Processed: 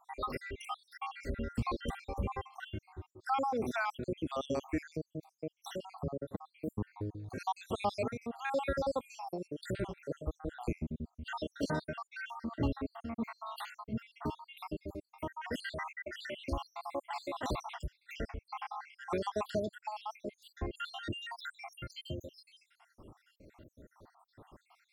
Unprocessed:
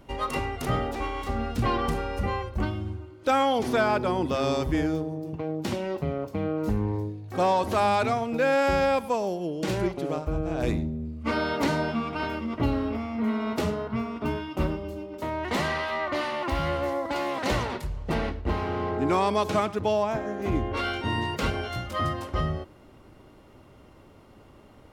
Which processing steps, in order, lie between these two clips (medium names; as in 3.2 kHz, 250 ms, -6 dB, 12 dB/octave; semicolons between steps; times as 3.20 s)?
random holes in the spectrogram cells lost 75%; in parallel at -0.5 dB: compression, threshold -42 dBFS, peak gain reduction 19.5 dB; on the sum: trim -7.5 dB